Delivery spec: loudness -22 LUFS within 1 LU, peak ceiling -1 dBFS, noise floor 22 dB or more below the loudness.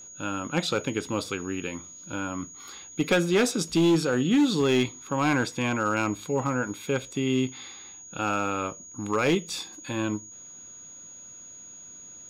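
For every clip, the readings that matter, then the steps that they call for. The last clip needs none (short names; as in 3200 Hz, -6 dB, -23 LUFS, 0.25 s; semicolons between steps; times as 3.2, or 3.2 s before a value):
clipped 1.1%; flat tops at -16.5 dBFS; steady tone 6700 Hz; tone level -43 dBFS; loudness -27.0 LUFS; peak -16.5 dBFS; loudness target -22.0 LUFS
-> clip repair -16.5 dBFS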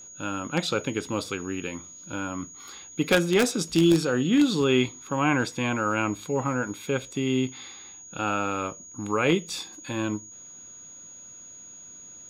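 clipped 0.0%; steady tone 6700 Hz; tone level -43 dBFS
-> notch 6700 Hz, Q 30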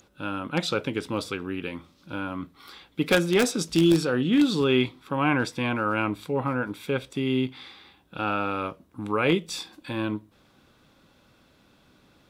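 steady tone none; loudness -26.0 LUFS; peak -7.5 dBFS; loudness target -22.0 LUFS
-> gain +4 dB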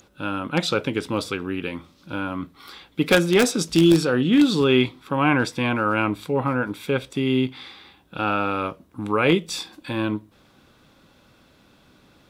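loudness -22.0 LUFS; peak -3.5 dBFS; noise floor -57 dBFS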